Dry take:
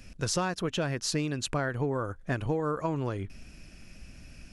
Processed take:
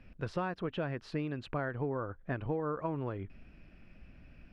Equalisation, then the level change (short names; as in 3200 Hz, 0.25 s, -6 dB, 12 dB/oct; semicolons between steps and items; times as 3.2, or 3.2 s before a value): air absorption 450 m; low shelf 250 Hz -4 dB; -2.5 dB